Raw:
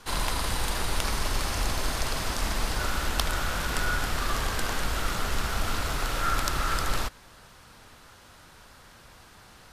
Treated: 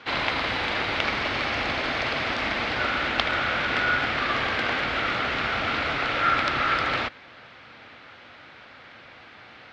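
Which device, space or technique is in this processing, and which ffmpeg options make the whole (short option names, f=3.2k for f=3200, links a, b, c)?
kitchen radio: -af "highpass=160,equalizer=f=180:t=q:w=4:g=-9,equalizer=f=400:t=q:w=4:g=-4,equalizer=f=990:t=q:w=4:g=-6,equalizer=f=2.2k:t=q:w=4:g=6,lowpass=f=3.7k:w=0.5412,lowpass=f=3.7k:w=1.3066,volume=7dB"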